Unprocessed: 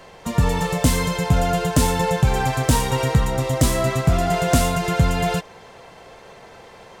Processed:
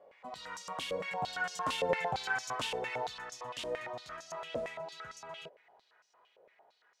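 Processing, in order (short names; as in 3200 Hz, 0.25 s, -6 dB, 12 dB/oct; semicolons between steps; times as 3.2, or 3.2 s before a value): Doppler pass-by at 2.03, 26 m/s, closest 25 m; stepped band-pass 8.8 Hz 550–5800 Hz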